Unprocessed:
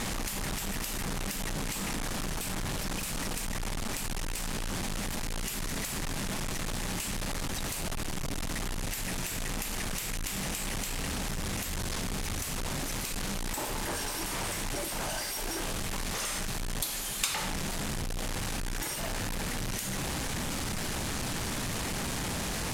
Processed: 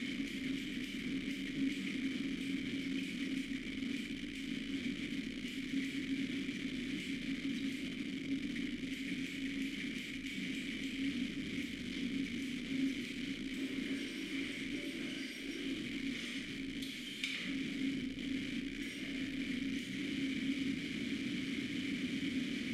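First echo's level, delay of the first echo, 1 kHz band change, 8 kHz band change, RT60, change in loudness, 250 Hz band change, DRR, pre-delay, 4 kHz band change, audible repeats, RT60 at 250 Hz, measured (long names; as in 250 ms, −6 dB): no echo audible, no echo audible, −24.5 dB, −21.0 dB, 1.3 s, −6.5 dB, +2.0 dB, 3.0 dB, 26 ms, −7.0 dB, no echo audible, 1.7 s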